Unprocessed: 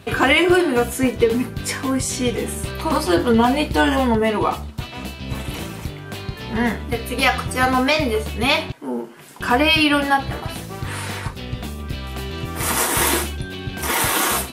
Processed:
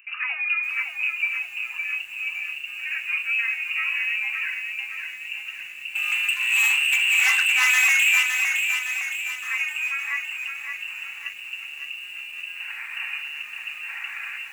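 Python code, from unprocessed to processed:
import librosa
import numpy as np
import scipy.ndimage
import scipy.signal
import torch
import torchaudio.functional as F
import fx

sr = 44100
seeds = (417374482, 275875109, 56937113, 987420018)

y = scipy.ndimage.median_filter(x, 15, mode='constant')
y = fx.freq_invert(y, sr, carrier_hz=2800)
y = np.diff(y, prepend=0.0)
y = fx.leveller(y, sr, passes=5, at=(5.95, 8.23))
y = scipy.signal.sosfilt(scipy.signal.ellip(4, 1.0, 80, 790.0, 'highpass', fs=sr, output='sos'), y)
y = fx.echo_crushed(y, sr, ms=563, feedback_pct=55, bits=8, wet_db=-5.5)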